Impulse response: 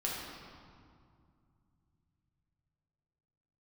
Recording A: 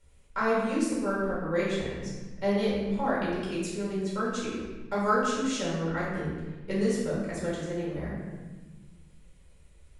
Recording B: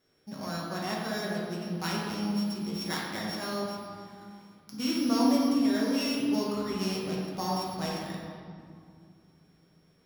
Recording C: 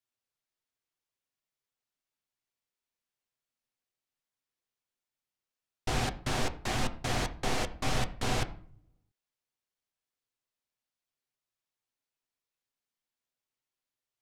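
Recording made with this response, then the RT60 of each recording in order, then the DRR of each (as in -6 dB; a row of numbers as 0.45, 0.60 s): B; 1.2, 2.3, 0.50 s; -8.0, -5.0, 6.5 dB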